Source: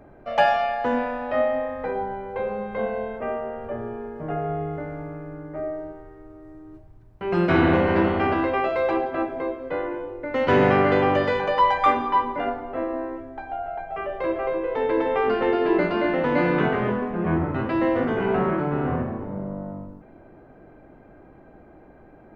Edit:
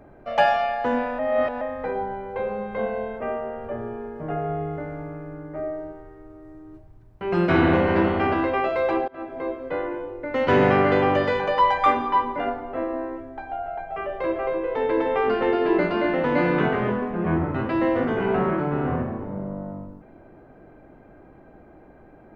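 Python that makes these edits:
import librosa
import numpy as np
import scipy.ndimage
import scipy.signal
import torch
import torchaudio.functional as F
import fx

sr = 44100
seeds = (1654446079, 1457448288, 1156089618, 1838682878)

y = fx.edit(x, sr, fx.reverse_span(start_s=1.19, length_s=0.42),
    fx.fade_in_from(start_s=9.08, length_s=0.43, floor_db=-24.0), tone=tone)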